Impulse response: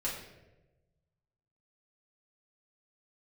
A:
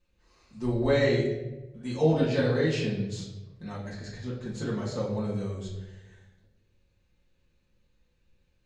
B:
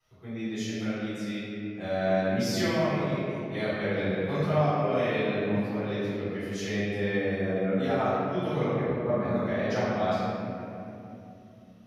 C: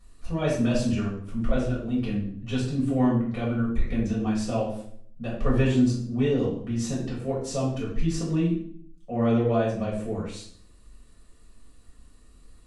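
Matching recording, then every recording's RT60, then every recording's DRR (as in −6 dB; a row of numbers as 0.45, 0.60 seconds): A; 1.1, 2.9, 0.60 seconds; −7.0, −15.0, −7.0 decibels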